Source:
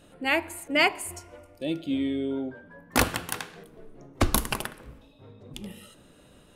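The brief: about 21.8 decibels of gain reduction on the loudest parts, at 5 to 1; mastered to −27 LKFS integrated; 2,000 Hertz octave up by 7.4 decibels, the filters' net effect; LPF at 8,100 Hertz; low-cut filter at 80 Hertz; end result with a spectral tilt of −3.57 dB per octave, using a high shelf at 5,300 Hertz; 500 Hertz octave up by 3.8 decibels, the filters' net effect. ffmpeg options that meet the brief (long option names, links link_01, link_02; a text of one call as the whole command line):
ffmpeg -i in.wav -af "highpass=80,lowpass=8100,equalizer=frequency=500:width_type=o:gain=4.5,equalizer=frequency=2000:width_type=o:gain=7.5,highshelf=frequency=5300:gain=6,acompressor=threshold=-37dB:ratio=5,volume=14.5dB" out.wav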